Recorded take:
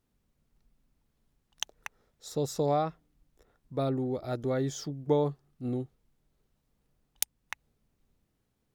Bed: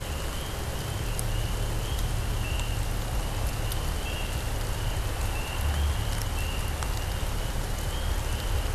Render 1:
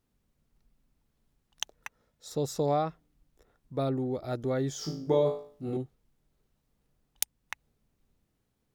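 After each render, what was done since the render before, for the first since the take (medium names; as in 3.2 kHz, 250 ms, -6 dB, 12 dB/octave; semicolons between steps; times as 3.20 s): 1.76–2.31 s: comb of notches 390 Hz; 4.79–5.77 s: flutter echo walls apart 3.2 m, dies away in 0.46 s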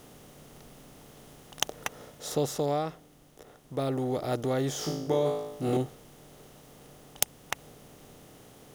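spectral levelling over time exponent 0.6; gain riding within 4 dB 0.5 s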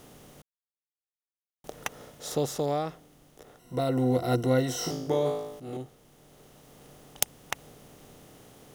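0.42–1.64 s: mute; 3.59–4.91 s: rippled EQ curve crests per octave 2, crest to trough 16 dB; 5.60–6.91 s: fade in, from -12.5 dB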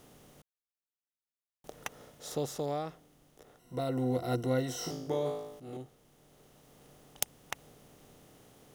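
trim -6 dB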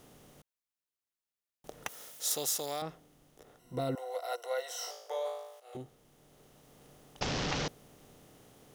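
1.88–2.82 s: tilt EQ +4.5 dB/octave; 3.95–5.75 s: steep high-pass 510 Hz 48 dB/octave; 7.21–7.68 s: one-bit delta coder 32 kbps, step -27 dBFS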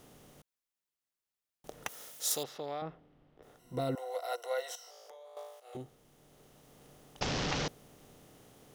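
2.43–3.43 s: distance through air 360 m; 4.75–5.37 s: compression 8:1, threshold -50 dBFS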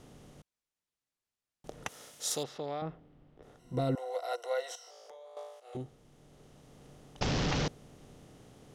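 low-pass 9.3 kHz 12 dB/octave; bass shelf 300 Hz +7 dB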